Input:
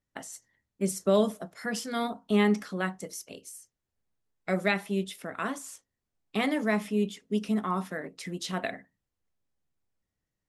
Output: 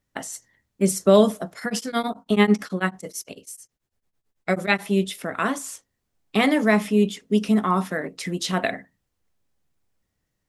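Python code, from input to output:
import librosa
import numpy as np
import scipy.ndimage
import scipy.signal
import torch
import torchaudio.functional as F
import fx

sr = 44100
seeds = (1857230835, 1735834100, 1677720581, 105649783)

y = fx.tremolo_abs(x, sr, hz=9.1, at=(1.59, 4.81), fade=0.02)
y = y * 10.0 ** (8.5 / 20.0)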